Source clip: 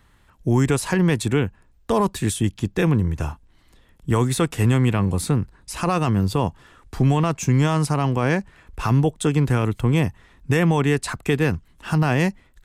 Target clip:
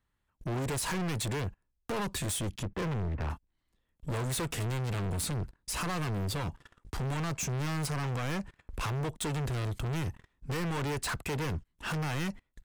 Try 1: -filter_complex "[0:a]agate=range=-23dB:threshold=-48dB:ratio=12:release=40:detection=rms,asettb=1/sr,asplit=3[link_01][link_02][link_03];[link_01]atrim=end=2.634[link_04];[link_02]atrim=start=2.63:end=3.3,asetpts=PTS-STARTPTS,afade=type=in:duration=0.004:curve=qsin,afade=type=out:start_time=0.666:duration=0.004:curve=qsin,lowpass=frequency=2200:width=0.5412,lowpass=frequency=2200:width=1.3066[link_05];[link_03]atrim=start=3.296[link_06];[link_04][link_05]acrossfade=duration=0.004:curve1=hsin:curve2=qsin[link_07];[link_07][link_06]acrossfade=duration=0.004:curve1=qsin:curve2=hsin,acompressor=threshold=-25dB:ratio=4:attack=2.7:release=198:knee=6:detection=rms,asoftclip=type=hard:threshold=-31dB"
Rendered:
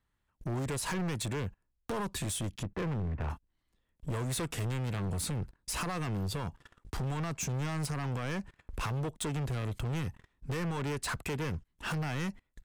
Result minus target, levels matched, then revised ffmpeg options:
downward compressor: peak gain reduction +7.5 dB
-filter_complex "[0:a]agate=range=-23dB:threshold=-48dB:ratio=12:release=40:detection=rms,asettb=1/sr,asplit=3[link_01][link_02][link_03];[link_01]atrim=end=2.634[link_04];[link_02]atrim=start=2.63:end=3.3,asetpts=PTS-STARTPTS,afade=type=in:duration=0.004:curve=qsin,afade=type=out:start_time=0.666:duration=0.004:curve=qsin,lowpass=frequency=2200:width=0.5412,lowpass=frequency=2200:width=1.3066[link_05];[link_03]atrim=start=3.296[link_06];[link_04][link_05]acrossfade=duration=0.004:curve1=hsin:curve2=qsin[link_07];[link_07][link_06]acrossfade=duration=0.004:curve1=qsin:curve2=hsin,acompressor=threshold=-15dB:ratio=4:attack=2.7:release=198:knee=6:detection=rms,asoftclip=type=hard:threshold=-31dB"

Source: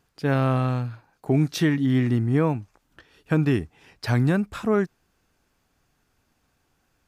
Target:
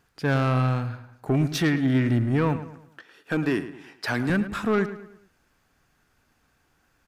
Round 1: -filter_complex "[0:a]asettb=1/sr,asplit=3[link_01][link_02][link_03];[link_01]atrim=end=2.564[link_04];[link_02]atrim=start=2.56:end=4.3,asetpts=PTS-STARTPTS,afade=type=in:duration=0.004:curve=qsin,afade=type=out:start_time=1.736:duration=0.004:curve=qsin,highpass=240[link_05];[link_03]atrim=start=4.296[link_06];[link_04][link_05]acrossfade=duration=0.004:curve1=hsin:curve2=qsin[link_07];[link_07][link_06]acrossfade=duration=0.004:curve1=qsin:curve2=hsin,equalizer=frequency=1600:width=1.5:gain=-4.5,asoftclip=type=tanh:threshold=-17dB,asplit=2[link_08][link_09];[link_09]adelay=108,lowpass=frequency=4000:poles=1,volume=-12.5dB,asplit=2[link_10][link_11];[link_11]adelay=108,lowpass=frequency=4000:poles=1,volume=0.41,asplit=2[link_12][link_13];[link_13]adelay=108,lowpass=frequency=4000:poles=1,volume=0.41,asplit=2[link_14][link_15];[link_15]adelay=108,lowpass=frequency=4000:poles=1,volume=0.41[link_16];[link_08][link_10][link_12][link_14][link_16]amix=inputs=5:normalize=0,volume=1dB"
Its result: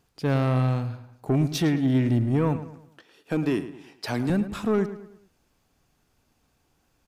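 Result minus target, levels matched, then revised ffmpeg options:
2,000 Hz band −7.0 dB
-filter_complex "[0:a]asettb=1/sr,asplit=3[link_01][link_02][link_03];[link_01]atrim=end=2.564[link_04];[link_02]atrim=start=2.56:end=4.3,asetpts=PTS-STARTPTS,afade=type=in:duration=0.004:curve=qsin,afade=type=out:start_time=1.736:duration=0.004:curve=qsin,highpass=240[link_05];[link_03]atrim=start=4.296[link_06];[link_04][link_05]acrossfade=duration=0.004:curve1=hsin:curve2=qsin[link_07];[link_07][link_06]acrossfade=duration=0.004:curve1=qsin:curve2=hsin,equalizer=frequency=1600:width=1.5:gain=5,asoftclip=type=tanh:threshold=-17dB,asplit=2[link_08][link_09];[link_09]adelay=108,lowpass=frequency=4000:poles=1,volume=-12.5dB,asplit=2[link_10][link_11];[link_11]adelay=108,lowpass=frequency=4000:poles=1,volume=0.41,asplit=2[link_12][link_13];[link_13]adelay=108,lowpass=frequency=4000:poles=1,volume=0.41,asplit=2[link_14][link_15];[link_15]adelay=108,lowpass=frequency=4000:poles=1,volume=0.41[link_16];[link_08][link_10][link_12][link_14][link_16]amix=inputs=5:normalize=0,volume=1dB"

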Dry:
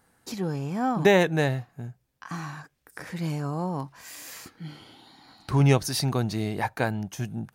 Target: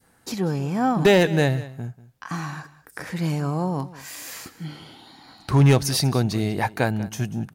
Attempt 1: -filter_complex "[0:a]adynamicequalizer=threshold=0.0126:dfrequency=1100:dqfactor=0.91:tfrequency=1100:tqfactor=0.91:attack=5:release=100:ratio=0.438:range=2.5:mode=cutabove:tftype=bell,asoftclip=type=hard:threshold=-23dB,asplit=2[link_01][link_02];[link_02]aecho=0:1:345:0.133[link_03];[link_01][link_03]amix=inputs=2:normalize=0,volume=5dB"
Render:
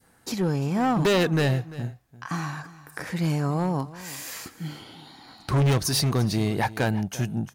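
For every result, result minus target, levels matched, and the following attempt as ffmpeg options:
echo 154 ms late; hard clipping: distortion +10 dB
-filter_complex "[0:a]adynamicequalizer=threshold=0.0126:dfrequency=1100:dqfactor=0.91:tfrequency=1100:tqfactor=0.91:attack=5:release=100:ratio=0.438:range=2.5:mode=cutabove:tftype=bell,asoftclip=type=hard:threshold=-23dB,asplit=2[link_01][link_02];[link_02]aecho=0:1:191:0.133[link_03];[link_01][link_03]amix=inputs=2:normalize=0,volume=5dB"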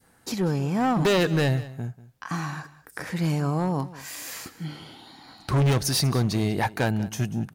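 hard clipping: distortion +10 dB
-filter_complex "[0:a]adynamicequalizer=threshold=0.0126:dfrequency=1100:dqfactor=0.91:tfrequency=1100:tqfactor=0.91:attack=5:release=100:ratio=0.438:range=2.5:mode=cutabove:tftype=bell,asoftclip=type=hard:threshold=-15dB,asplit=2[link_01][link_02];[link_02]aecho=0:1:191:0.133[link_03];[link_01][link_03]amix=inputs=2:normalize=0,volume=5dB"

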